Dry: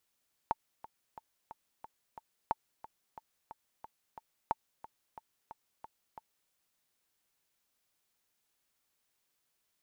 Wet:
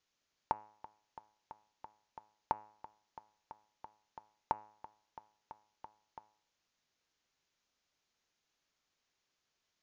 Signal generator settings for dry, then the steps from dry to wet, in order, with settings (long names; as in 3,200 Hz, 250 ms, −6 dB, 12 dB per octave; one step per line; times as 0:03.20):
click track 180 BPM, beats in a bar 6, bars 3, 890 Hz, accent 17.5 dB −16 dBFS
Butterworth low-pass 6,900 Hz 96 dB per octave
hum removal 105.9 Hz, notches 27